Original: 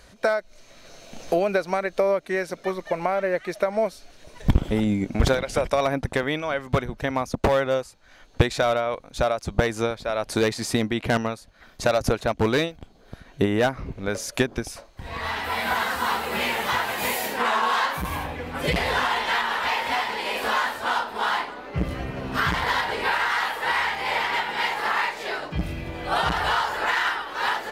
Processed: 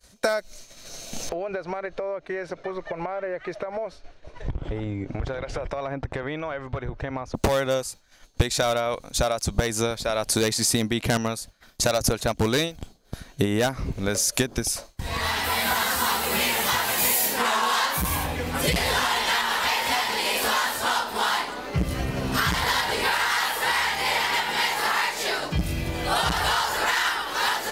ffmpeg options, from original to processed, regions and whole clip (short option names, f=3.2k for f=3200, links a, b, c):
-filter_complex "[0:a]asettb=1/sr,asplit=3[a][b][c];[a]atrim=end=1.294[d];[b]atrim=start=1.29:end=7.35,asetpts=PTS-STARTPTS,afade=t=in:d=0.004:c=qsin,afade=t=out:st=6.056:d=0.004:c=qsin,lowpass=1.9k,equalizer=f=210:w=3.6:g=-14.5,acompressor=threshold=-30dB:ratio=6:attack=3.2:release=140:knee=1:detection=peak[e];[c]atrim=start=7.346[f];[d][e]acrossfade=d=0.004:c1=hsin:c2=qsin[g];[g][f]acrossfade=d=0.004:c1=qsin:c2=hsin,agate=range=-33dB:threshold=-42dB:ratio=3:detection=peak,bass=f=250:g=3,treble=f=4k:g=13,acompressor=threshold=-27dB:ratio=2,volume=3.5dB"